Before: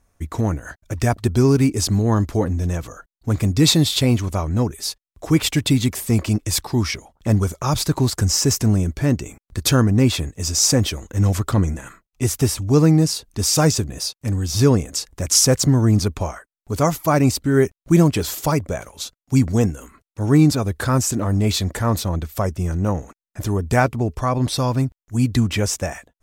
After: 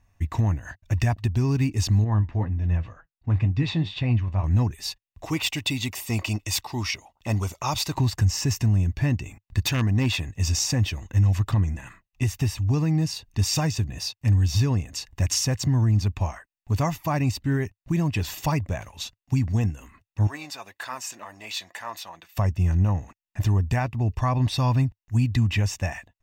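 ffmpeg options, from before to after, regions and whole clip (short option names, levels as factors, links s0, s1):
-filter_complex "[0:a]asettb=1/sr,asplit=3[s0][s1][s2];[s0]atrim=end=2.044[s3];[s1]atrim=start=2.04:end=4.44,asetpts=PTS-STARTPTS,afade=t=in:d=0.004:c=qsin,afade=t=out:st=2.396:d=0.004:c=qsin,lowpass=2700,flanger=delay=6:depth=6.5:regen=63:speed=2:shape=sinusoidal[s4];[s2]atrim=start=4.436[s5];[s3][s4]acrossfade=d=0.004:c1=hsin:c2=qsin[s6];[s6][s5]acrossfade=d=0.004:c1=qsin:c2=hsin,asettb=1/sr,asplit=3[s7][s8][s9];[s7]atrim=end=5.264[s10];[s8]atrim=start=5.26:end=7.95,asetpts=PTS-STARTPTS,afade=t=in:d=0.004:c=qsin,afade=t=out:st=2.686:d=0.004:c=qsin,bass=f=250:g=-12,treble=f=4000:g=3,bandreject=f=1700:w=6.8,volume=3.55,asoftclip=hard,volume=0.282[s11];[s9]atrim=start=7.946[s12];[s10][s11]acrossfade=d=0.004:c1=hsin:c2=qsin[s13];[s13][s12]acrossfade=d=0.004:c1=qsin:c2=hsin,asettb=1/sr,asplit=3[s14][s15][s16];[s14]atrim=end=9.664[s17];[s15]atrim=start=9.66:end=10.29,asetpts=PTS-STARTPTS,afade=t=in:d=0.004:c=qsin,afade=t=out:st=0.626:d=0.004:c=qsin,lowshelf=f=190:g=-8.5,aeval=exprs='0.266*(abs(mod(val(0)/0.266+3,4)-2)-1)':c=same[s18];[s16]atrim=start=10.286[s19];[s17][s18]acrossfade=d=0.004:c1=hsin:c2=qsin[s20];[s20][s19]acrossfade=d=0.004:c1=qsin:c2=hsin,asettb=1/sr,asplit=3[s21][s22][s23];[s21]atrim=end=20.274[s24];[s22]atrim=start=20.27:end=22.37,asetpts=PTS-STARTPTS,afade=t=in:d=0.004:c=qsin,afade=t=out:st=2.096:d=0.004:c=qsin,tremolo=f=280:d=0.182,highpass=740,flanger=delay=2.9:depth=3.2:regen=68:speed=1.8:shape=sinusoidal[s25];[s23]atrim=start=22.366[s26];[s24][s25]acrossfade=d=0.004:c1=hsin:c2=qsin[s27];[s27][s26]acrossfade=d=0.004:c1=qsin:c2=hsin,equalizer=f=100:t=o:w=0.67:g=7,equalizer=f=2500:t=o:w=0.67:g=8,equalizer=f=10000:t=o:w=0.67:g=-10,alimiter=limit=0.282:level=0:latency=1:release=444,aecho=1:1:1.1:0.48,volume=0.596"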